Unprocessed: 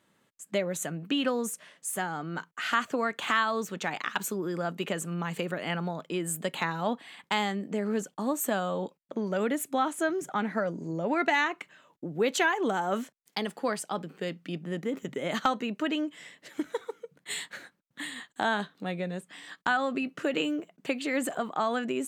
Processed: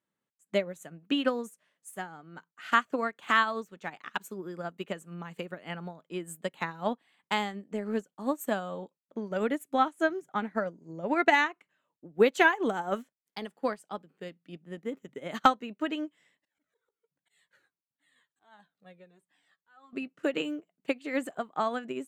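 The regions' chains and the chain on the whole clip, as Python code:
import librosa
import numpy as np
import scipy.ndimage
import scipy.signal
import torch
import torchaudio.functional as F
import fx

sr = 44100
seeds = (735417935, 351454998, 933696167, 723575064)

y = fx.chain(x, sr, fx.peak_eq(hz=230.0, db=-4.0, octaves=0.52),
    fx.auto_swell(attack_ms=282.0),
    fx.comb_cascade(direction='falling', hz=1.4), at=(16.37, 19.93))
y = fx.peak_eq(y, sr, hz=5200.0, db=-3.0, octaves=1.8)
y = fx.upward_expand(y, sr, threshold_db=-39.0, expansion=2.5)
y = y * 10.0 ** (7.0 / 20.0)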